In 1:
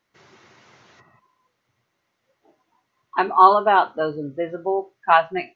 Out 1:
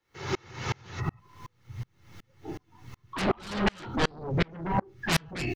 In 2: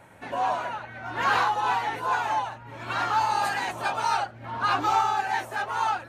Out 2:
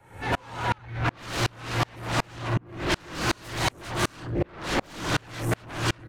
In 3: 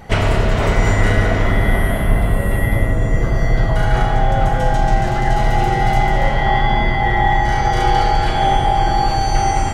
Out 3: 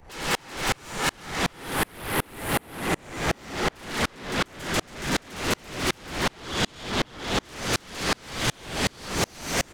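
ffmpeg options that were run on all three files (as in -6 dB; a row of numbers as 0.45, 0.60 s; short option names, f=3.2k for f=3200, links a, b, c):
-filter_complex "[0:a]afftfilt=real='re*lt(hypot(re,im),0.282)':imag='im*lt(hypot(re,im),0.282)':win_size=1024:overlap=0.75,lowshelf=f=250:g=6,bandreject=f=610:w=15,aecho=1:1:2.3:0.42,asubboost=boost=11.5:cutoff=180,acrossover=split=110|440|4600[a][b][c][d];[a]acompressor=threshold=-24dB:ratio=4[e];[b]acompressor=threshold=-33dB:ratio=4[f];[c]acompressor=threshold=-33dB:ratio=4[g];[d]acompressor=threshold=-42dB:ratio=4[h];[e][f][g][h]amix=inputs=4:normalize=0,aeval=exprs='0.266*sin(PI/2*8.91*val(0)/0.266)':c=same,alimiter=limit=-18dB:level=0:latency=1:release=45,acontrast=72,asplit=2[i][j];[j]adelay=65,lowpass=f=860:p=1,volume=-20.5dB,asplit=2[k][l];[l]adelay=65,lowpass=f=860:p=1,volume=0.5,asplit=2[m][n];[n]adelay=65,lowpass=f=860:p=1,volume=0.5,asplit=2[o][p];[p]adelay=65,lowpass=f=860:p=1,volume=0.5[q];[k][m][o][q]amix=inputs=4:normalize=0[r];[i][r]amix=inputs=2:normalize=0,aeval=exprs='val(0)*pow(10,-35*if(lt(mod(-2.7*n/s,1),2*abs(-2.7)/1000),1-mod(-2.7*n/s,1)/(2*abs(-2.7)/1000),(mod(-2.7*n/s,1)-2*abs(-2.7)/1000)/(1-2*abs(-2.7)/1000))/20)':c=same,volume=-5.5dB"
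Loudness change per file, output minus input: -12.0, -2.5, -11.0 LU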